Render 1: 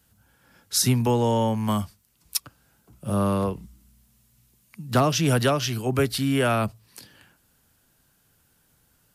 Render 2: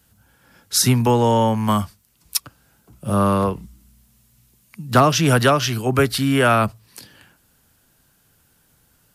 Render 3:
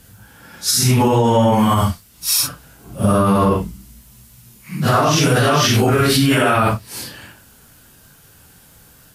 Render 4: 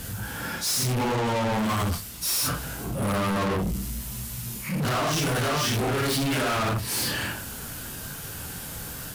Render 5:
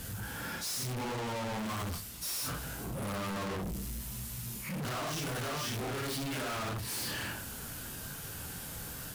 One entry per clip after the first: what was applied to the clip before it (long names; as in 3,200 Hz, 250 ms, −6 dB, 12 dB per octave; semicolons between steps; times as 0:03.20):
dynamic equaliser 1,300 Hz, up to +5 dB, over −39 dBFS, Q 1.1; level +4.5 dB
random phases in long frames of 200 ms; in parallel at −1 dB: compressor whose output falls as the input rises −23 dBFS, ratio −0.5; on the sum: brickwall limiter −9.5 dBFS, peak gain reduction 7 dB; level +3.5 dB
soft clipping −18.5 dBFS, distortion −9 dB; reversed playback; downward compressor, threshold −30 dBFS, peak gain reduction 9.5 dB; reversed playback; leveller curve on the samples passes 3
gain into a clipping stage and back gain 29.5 dB; level −6 dB